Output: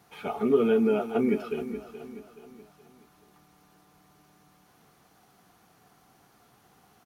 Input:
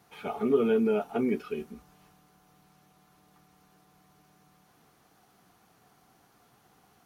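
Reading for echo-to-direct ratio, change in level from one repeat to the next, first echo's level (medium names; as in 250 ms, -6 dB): -11.5 dB, -7.0 dB, -12.5 dB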